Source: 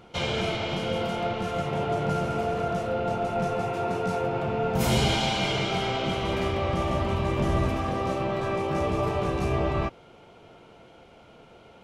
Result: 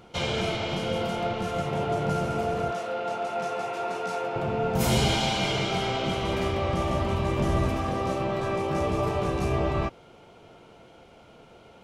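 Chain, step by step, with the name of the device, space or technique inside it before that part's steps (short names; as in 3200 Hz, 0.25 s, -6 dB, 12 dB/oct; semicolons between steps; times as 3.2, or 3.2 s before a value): 2.71–4.36 weighting filter A; exciter from parts (in parallel at -8 dB: HPF 3700 Hz 12 dB/oct + soft clip -30 dBFS, distortion -17 dB)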